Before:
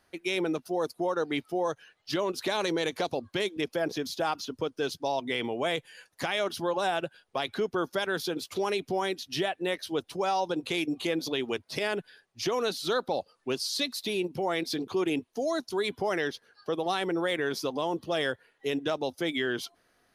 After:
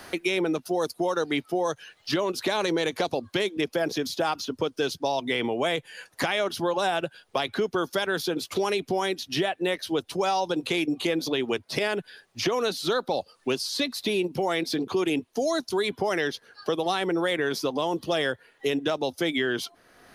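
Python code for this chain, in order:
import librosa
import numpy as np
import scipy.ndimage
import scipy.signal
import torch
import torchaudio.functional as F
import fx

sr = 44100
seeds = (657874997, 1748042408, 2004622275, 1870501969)

y = fx.band_squash(x, sr, depth_pct=70)
y = F.gain(torch.from_numpy(y), 3.0).numpy()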